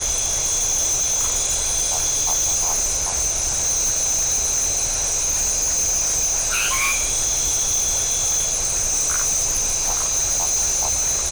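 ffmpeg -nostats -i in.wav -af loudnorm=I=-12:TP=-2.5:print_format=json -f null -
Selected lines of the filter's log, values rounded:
"input_i" : "-17.6",
"input_tp" : "-13.2",
"input_lra" : "0.3",
"input_thresh" : "-27.6",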